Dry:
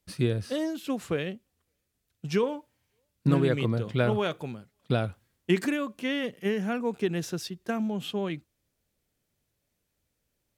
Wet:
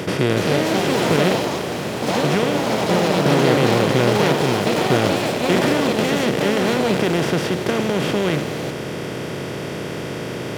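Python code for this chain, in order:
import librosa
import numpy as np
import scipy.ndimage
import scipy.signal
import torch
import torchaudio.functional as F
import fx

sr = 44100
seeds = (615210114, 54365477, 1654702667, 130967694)

y = fx.bin_compress(x, sr, power=0.2)
y = fx.echo_pitch(y, sr, ms=306, semitones=4, count=3, db_per_echo=-3.0)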